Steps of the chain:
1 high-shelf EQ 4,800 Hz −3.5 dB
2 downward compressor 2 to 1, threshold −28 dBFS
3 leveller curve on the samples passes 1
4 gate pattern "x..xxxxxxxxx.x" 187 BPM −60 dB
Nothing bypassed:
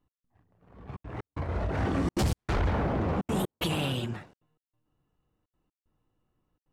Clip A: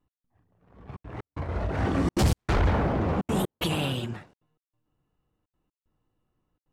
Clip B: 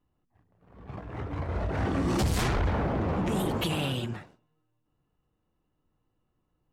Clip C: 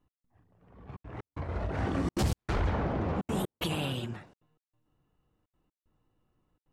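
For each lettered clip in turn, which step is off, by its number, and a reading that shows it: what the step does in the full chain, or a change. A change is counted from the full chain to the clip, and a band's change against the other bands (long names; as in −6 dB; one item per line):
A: 2, change in momentary loudness spread +4 LU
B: 4, 8 kHz band +1.5 dB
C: 3, change in crest factor +2.5 dB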